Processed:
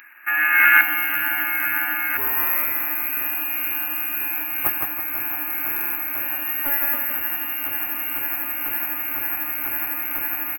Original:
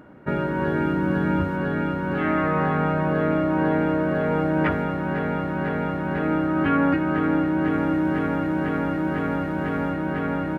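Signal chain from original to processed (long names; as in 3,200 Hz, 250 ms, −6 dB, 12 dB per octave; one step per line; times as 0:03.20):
automatic gain control gain up to 11.5 dB
high-pass filter 640 Hz 12 dB per octave
tilt shelving filter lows −8 dB, about 1,100 Hz
repeating echo 163 ms, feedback 46%, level −4.5 dB
voice inversion scrambler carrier 3,100 Hz
bad sample-rate conversion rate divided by 3×, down none, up zero stuff
parametric band 1,700 Hz +15 dB 1.6 octaves, from 0:00.81 +2.5 dB, from 0:02.17 −10 dB
buffer that repeats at 0:05.72, samples 2,048, times 4
highs frequency-modulated by the lows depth 0.17 ms
level −6.5 dB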